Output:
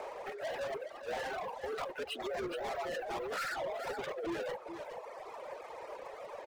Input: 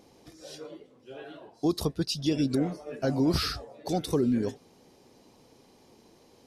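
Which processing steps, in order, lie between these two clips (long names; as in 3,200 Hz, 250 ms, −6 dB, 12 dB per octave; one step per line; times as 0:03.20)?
single-sideband voice off tune +91 Hz 410–2,200 Hz
compressor whose output falls as the input rises −38 dBFS, ratio −0.5
brickwall limiter −31.5 dBFS, peak gain reduction 8.5 dB
leveller curve on the samples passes 5
on a send: single-tap delay 420 ms −7.5 dB
on the sum: reverb reduction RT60 1.6 s
level −2 dB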